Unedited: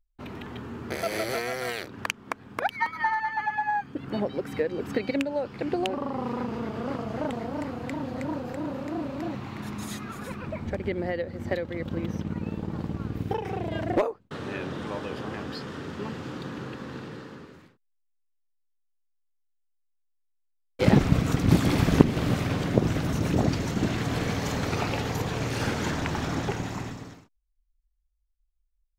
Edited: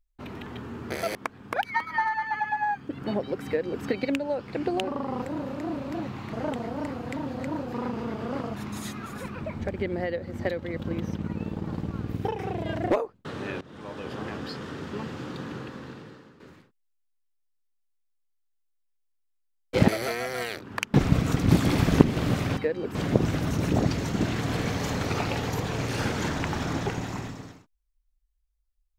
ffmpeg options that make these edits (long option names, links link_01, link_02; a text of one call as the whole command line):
ffmpeg -i in.wav -filter_complex "[0:a]asplit=12[link_01][link_02][link_03][link_04][link_05][link_06][link_07][link_08][link_09][link_10][link_11][link_12];[link_01]atrim=end=1.152[link_13];[link_02]atrim=start=2.208:end=6.282[link_14];[link_03]atrim=start=8.498:end=9.612[link_15];[link_04]atrim=start=7.098:end=8.502[link_16];[link_05]atrim=start=6.278:end=7.102[link_17];[link_06]atrim=start=9.608:end=14.67,asetpts=PTS-STARTPTS,afade=type=out:start_time=5.058:duration=0.004:curve=hsin:silence=0.0944061[link_18];[link_07]atrim=start=14.67:end=17.46,asetpts=PTS-STARTPTS,afade=type=in:duration=0.58:silence=0.0944061,afade=type=out:start_time=1.93:duration=0.86:silence=0.251189[link_19];[link_08]atrim=start=17.46:end=20.942,asetpts=PTS-STARTPTS,afade=type=in:duration=0.004:curve=hsin:silence=0.251189[link_20];[link_09]atrim=start=1.148:end=2.212[link_21];[link_10]atrim=start=20.938:end=22.572[link_22];[link_11]atrim=start=4.518:end=4.902[link_23];[link_12]atrim=start=22.568[link_24];[link_13][link_14]acrossfade=duration=0.004:curve1=hsin:curve2=hsin[link_25];[link_25][link_15]acrossfade=duration=0.004:curve1=hsin:curve2=hsin[link_26];[link_26][link_16]acrossfade=duration=0.004:curve1=hsin:curve2=hsin[link_27];[link_27][link_17]acrossfade=duration=0.004:curve1=hsin:curve2=hsin[link_28];[link_18][link_19][link_20]concat=n=3:v=0:a=1[link_29];[link_28][link_29]acrossfade=duration=0.004:curve1=hsin:curve2=hsin[link_30];[link_30][link_21]acrossfade=duration=0.004:curve1=hsin:curve2=hsin[link_31];[link_31][link_22]acrossfade=duration=0.004:curve1=hsin:curve2=hsin[link_32];[link_32][link_23]acrossfade=duration=0.004:curve1=hsin:curve2=hsin[link_33];[link_33][link_24]acrossfade=duration=0.004:curve1=hsin:curve2=hsin" out.wav